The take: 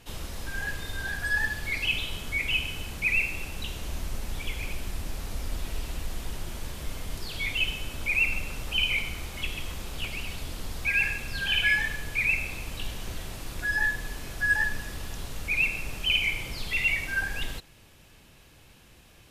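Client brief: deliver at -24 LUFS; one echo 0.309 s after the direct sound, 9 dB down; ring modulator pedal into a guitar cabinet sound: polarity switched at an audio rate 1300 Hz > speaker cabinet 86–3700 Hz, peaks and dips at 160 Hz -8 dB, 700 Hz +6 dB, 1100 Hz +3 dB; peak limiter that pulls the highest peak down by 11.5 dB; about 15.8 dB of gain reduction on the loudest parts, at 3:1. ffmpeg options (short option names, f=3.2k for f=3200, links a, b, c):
-af "acompressor=threshold=-43dB:ratio=3,alimiter=level_in=15dB:limit=-24dB:level=0:latency=1,volume=-15dB,aecho=1:1:309:0.355,aeval=exprs='val(0)*sgn(sin(2*PI*1300*n/s))':c=same,highpass=86,equalizer=f=160:t=q:w=4:g=-8,equalizer=f=700:t=q:w=4:g=6,equalizer=f=1.1k:t=q:w=4:g=3,lowpass=f=3.7k:w=0.5412,lowpass=f=3.7k:w=1.3066,volume=21.5dB"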